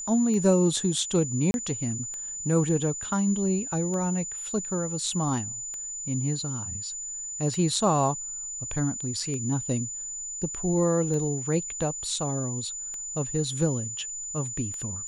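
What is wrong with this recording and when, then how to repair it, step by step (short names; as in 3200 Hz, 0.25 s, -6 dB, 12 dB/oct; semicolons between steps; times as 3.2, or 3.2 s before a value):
tick 33 1/3 rpm -24 dBFS
tone 7000 Hz -33 dBFS
1.51–1.54 gap 31 ms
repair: de-click; notch 7000 Hz, Q 30; interpolate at 1.51, 31 ms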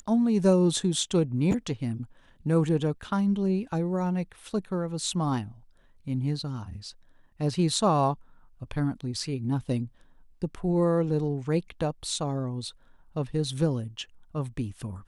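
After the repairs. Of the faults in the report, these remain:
none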